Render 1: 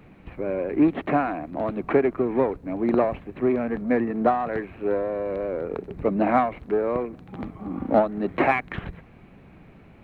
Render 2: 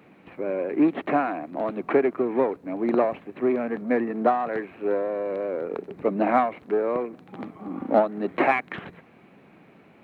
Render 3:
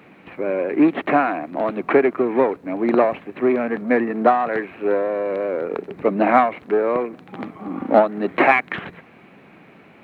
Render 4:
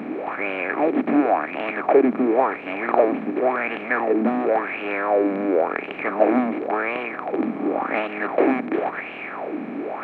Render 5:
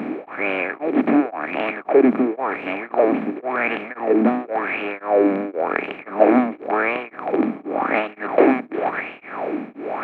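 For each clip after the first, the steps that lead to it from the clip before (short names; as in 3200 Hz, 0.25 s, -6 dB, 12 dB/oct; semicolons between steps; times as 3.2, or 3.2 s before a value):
HPF 220 Hz 12 dB/oct
bell 2100 Hz +4 dB 2.1 oct; gain +4.5 dB
per-bin compression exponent 0.4; LFO bell 0.93 Hz 220–2900 Hz +18 dB; gain -16.5 dB
beating tremolo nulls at 1.9 Hz; gain +4.5 dB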